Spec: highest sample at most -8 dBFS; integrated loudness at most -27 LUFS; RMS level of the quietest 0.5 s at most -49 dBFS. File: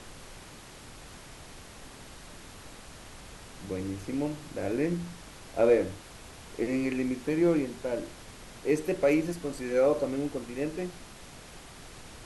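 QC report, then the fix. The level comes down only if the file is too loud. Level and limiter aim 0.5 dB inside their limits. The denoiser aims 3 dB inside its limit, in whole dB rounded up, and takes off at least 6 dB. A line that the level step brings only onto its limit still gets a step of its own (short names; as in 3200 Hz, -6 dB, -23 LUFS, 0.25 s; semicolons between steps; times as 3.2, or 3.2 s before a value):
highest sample -12.0 dBFS: OK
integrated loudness -29.5 LUFS: OK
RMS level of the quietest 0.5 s -48 dBFS: fail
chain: denoiser 6 dB, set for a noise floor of -48 dBFS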